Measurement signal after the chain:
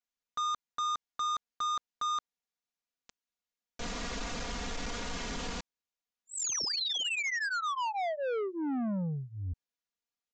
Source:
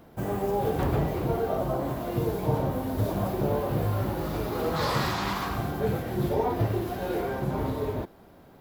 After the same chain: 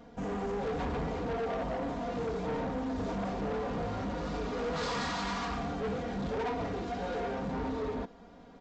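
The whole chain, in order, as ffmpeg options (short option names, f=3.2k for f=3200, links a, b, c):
-af "aecho=1:1:4.2:0.95,aresample=16000,asoftclip=type=tanh:threshold=-27.5dB,aresample=44100,volume=-3dB"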